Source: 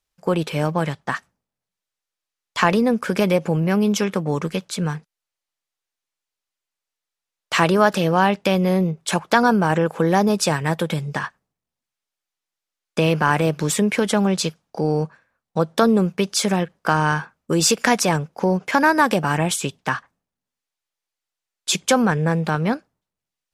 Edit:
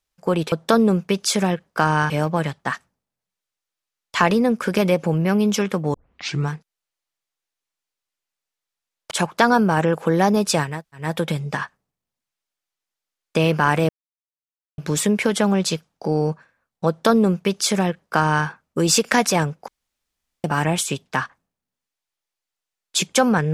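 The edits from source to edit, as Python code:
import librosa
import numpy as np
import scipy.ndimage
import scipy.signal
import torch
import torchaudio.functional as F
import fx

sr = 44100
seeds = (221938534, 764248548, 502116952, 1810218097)

y = fx.edit(x, sr, fx.tape_start(start_s=4.36, length_s=0.55),
    fx.cut(start_s=7.53, length_s=1.51),
    fx.insert_room_tone(at_s=10.66, length_s=0.31, crossfade_s=0.24),
    fx.insert_silence(at_s=13.51, length_s=0.89),
    fx.duplicate(start_s=15.61, length_s=1.58, to_s=0.52),
    fx.room_tone_fill(start_s=18.41, length_s=0.76), tone=tone)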